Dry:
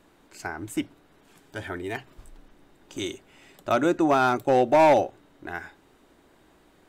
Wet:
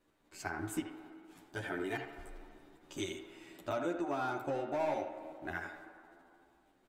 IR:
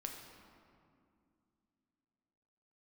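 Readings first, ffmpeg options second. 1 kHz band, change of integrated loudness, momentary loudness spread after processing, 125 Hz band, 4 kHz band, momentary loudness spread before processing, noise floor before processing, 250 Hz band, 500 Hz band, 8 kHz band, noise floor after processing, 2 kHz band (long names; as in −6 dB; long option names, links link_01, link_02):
−15.5 dB, −15.5 dB, 19 LU, −10.5 dB, −10.5 dB, 20 LU, −60 dBFS, −12.5 dB, −14.5 dB, −7.5 dB, −71 dBFS, −9.5 dB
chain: -filter_complex "[0:a]agate=range=-11dB:threshold=-56dB:ratio=16:detection=peak,acompressor=threshold=-29dB:ratio=10,asplit=2[link_01][link_02];[link_02]highpass=370,lowpass=3100[link_03];[1:a]atrim=start_sample=2205,adelay=78[link_04];[link_03][link_04]afir=irnorm=-1:irlink=0,volume=-2.5dB[link_05];[link_01][link_05]amix=inputs=2:normalize=0,asplit=2[link_06][link_07];[link_07]adelay=10.7,afreqshift=0.4[link_08];[link_06][link_08]amix=inputs=2:normalize=1,volume=-1.5dB"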